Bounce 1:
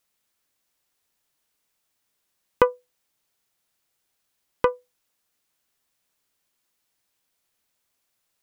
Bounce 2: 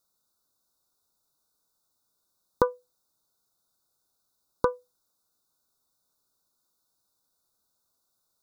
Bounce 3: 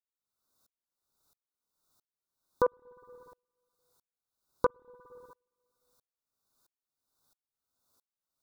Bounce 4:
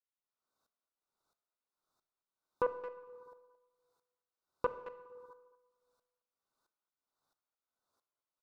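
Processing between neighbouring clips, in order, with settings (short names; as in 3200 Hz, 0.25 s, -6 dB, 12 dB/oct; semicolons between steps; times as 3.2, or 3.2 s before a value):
Chebyshev band-stop 1500–3600 Hz, order 5; compressor 2:1, threshold -21 dBFS, peak gain reduction 5.5 dB
limiter -17.5 dBFS, peak gain reduction 11 dB; reverb RT60 1.4 s, pre-delay 51 ms, DRR 1 dB; dB-ramp tremolo swelling 1.5 Hz, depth 37 dB; gain +6 dB
speakerphone echo 0.22 s, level -14 dB; overdrive pedal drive 11 dB, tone 1300 Hz, clips at -12.5 dBFS; Schroeder reverb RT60 0.95 s, combs from 25 ms, DRR 11.5 dB; gain -6.5 dB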